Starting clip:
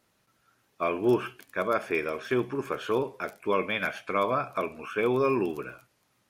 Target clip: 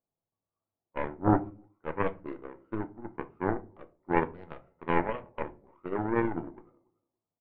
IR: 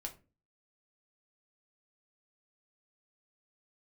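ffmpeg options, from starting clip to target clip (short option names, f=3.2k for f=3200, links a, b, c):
-filter_complex "[0:a]lowpass=f=880:t=q:w=2,aecho=1:1:244|488:0.141|0.0212,aeval=exprs='0.282*(cos(1*acos(clip(val(0)/0.282,-1,1)))-cos(1*PI/2))+0.0891*(cos(3*acos(clip(val(0)/0.282,-1,1)))-cos(3*PI/2))+0.00355*(cos(4*acos(clip(val(0)/0.282,-1,1)))-cos(4*PI/2))':c=same,asetrate=37485,aresample=44100,asplit=2[a][b];[1:a]atrim=start_sample=2205,lowshelf=f=410:g=6.5[c];[b][c]afir=irnorm=-1:irlink=0,volume=1.5dB[d];[a][d]amix=inputs=2:normalize=0,volume=-4dB"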